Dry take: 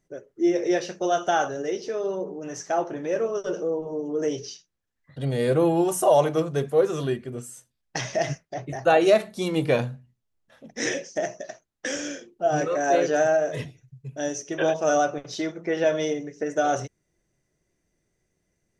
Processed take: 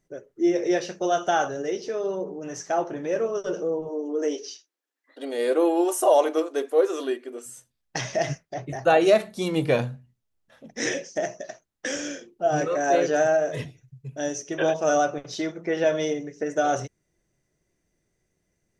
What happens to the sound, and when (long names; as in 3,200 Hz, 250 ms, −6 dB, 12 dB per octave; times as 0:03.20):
0:03.89–0:07.46: linear-phase brick-wall high-pass 250 Hz